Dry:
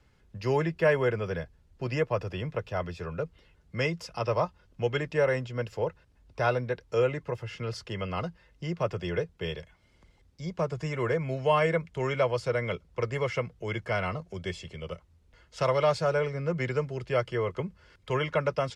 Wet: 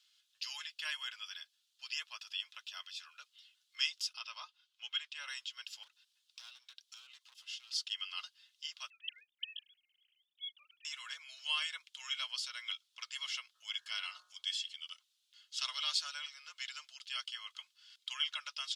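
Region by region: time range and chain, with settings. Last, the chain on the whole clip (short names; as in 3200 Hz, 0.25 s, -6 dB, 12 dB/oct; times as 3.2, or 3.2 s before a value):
4.13–5.26 HPF 49 Hz + tone controls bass -1 dB, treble -9 dB + notch 1800 Hz, Q 16
5.83–7.71 compressor 4:1, threshold -36 dBFS + dynamic EQ 1700 Hz, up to -6 dB, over -56 dBFS, Q 0.92 + hard clip -36.5 dBFS
8.9–10.85 sine-wave speech + EQ curve 310 Hz 0 dB, 730 Hz -29 dB, 1100 Hz -16 dB, 5600 Hz +13 dB
13.54–14.71 low shelf 390 Hz +7.5 dB + de-hum 60.43 Hz, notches 31 + whine 420 Hz -41 dBFS
whole clip: inverse Chebyshev high-pass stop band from 420 Hz, stop band 60 dB; resonant high shelf 2600 Hz +9 dB, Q 3; gain -6 dB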